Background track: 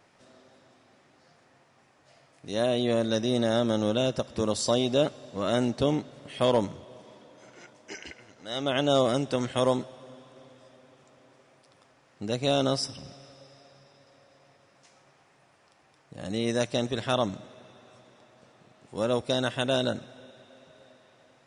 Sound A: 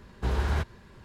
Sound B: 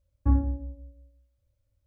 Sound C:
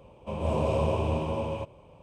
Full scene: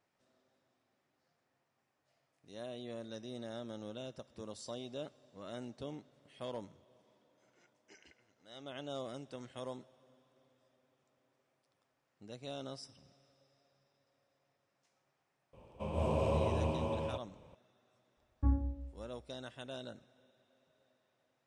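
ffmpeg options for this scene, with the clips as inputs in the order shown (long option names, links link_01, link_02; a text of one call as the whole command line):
ffmpeg -i bed.wav -i cue0.wav -i cue1.wav -i cue2.wav -filter_complex "[0:a]volume=-19.5dB[link_01];[3:a]atrim=end=2.02,asetpts=PTS-STARTPTS,volume=-6dB,afade=type=in:duration=0.004:curve=hsin,afade=type=out:start_time=2.016:duration=0.004:curve=hsin,adelay=15530[link_02];[2:a]atrim=end=1.86,asetpts=PTS-STARTPTS,volume=-8.5dB,afade=type=in:duration=0.004:curve=hsin,afade=type=out:start_time=1.856:duration=0.004:curve=hsin,adelay=18170[link_03];[link_01][link_02][link_03]amix=inputs=3:normalize=0" out.wav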